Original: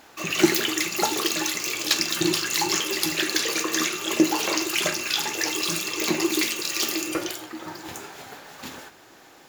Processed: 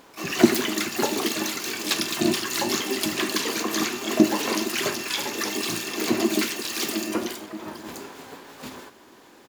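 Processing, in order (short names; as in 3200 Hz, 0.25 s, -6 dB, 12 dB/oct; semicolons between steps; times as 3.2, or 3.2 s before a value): harmoniser -7 st -4 dB, +12 st -8 dB; small resonant body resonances 270/390/1000 Hz, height 7 dB, ringing for 30 ms; gain -4.5 dB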